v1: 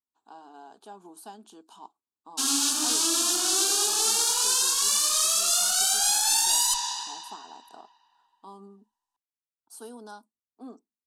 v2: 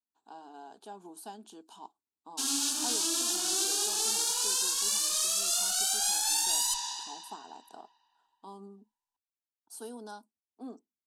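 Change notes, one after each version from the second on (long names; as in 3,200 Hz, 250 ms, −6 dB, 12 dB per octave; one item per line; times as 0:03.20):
background −5.5 dB
master: add parametric band 1,200 Hz −5.5 dB 0.42 octaves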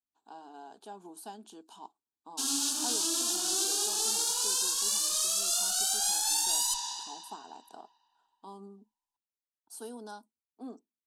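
background: add parametric band 2,100 Hz −9.5 dB 0.46 octaves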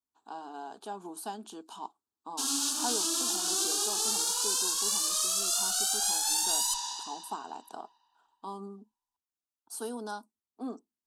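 speech +5.5 dB
master: add parametric band 1,200 Hz +5.5 dB 0.42 octaves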